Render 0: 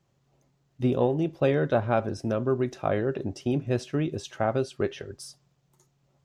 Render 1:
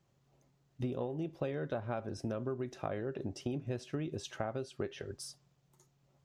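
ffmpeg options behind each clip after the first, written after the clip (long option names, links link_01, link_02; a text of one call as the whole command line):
ffmpeg -i in.wav -af "acompressor=threshold=-31dB:ratio=6,volume=-3dB" out.wav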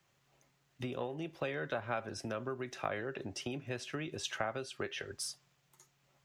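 ffmpeg -i in.wav -filter_complex "[0:a]equalizer=frequency=2200:width=0.41:gain=15,acrossover=split=140|560|4800[link_01][link_02][link_03][link_04];[link_04]crystalizer=i=1.5:c=0[link_05];[link_01][link_02][link_03][link_05]amix=inputs=4:normalize=0,volume=-5.5dB" out.wav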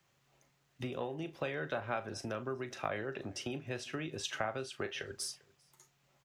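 ffmpeg -i in.wav -filter_complex "[0:a]asplit=2[link_01][link_02];[link_02]adelay=38,volume=-13dB[link_03];[link_01][link_03]amix=inputs=2:normalize=0,asplit=2[link_04][link_05];[link_05]adelay=396.5,volume=-24dB,highshelf=frequency=4000:gain=-8.92[link_06];[link_04][link_06]amix=inputs=2:normalize=0" out.wav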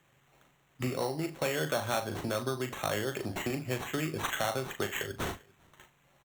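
ffmpeg -i in.wav -filter_complex "[0:a]acrusher=samples=9:mix=1:aa=0.000001,volume=29dB,asoftclip=hard,volume=-29dB,asplit=2[link_01][link_02];[link_02]adelay=39,volume=-7.5dB[link_03];[link_01][link_03]amix=inputs=2:normalize=0,volume=6dB" out.wav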